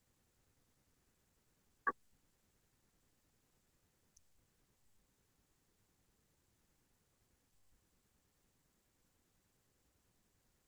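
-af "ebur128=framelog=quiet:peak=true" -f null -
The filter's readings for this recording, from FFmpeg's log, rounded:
Integrated loudness:
  I:         -42.7 LUFS
  Threshold: -53.6 LUFS
Loudness range:
  LRA:         0.0 LU
  Threshold: -71.6 LUFS
  LRA low:   -51.4 LUFS
  LRA high:  -51.4 LUFS
True peak:
  Peak:      -22.7 dBFS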